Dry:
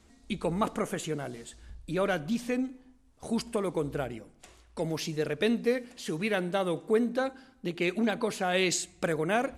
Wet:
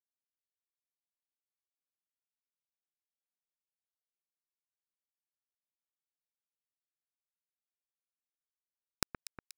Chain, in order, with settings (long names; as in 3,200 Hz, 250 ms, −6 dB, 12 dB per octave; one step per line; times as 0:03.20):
high-pass filter 65 Hz 6 dB per octave
brickwall limiter −23 dBFS, peak gain reduction 8.5 dB
gate with flip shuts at −42 dBFS, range −31 dB
bit reduction 6 bits
on a send: delay that swaps between a low-pass and a high-pass 120 ms, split 2,200 Hz, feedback 74%, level −10 dB
on the sum: level +17 dB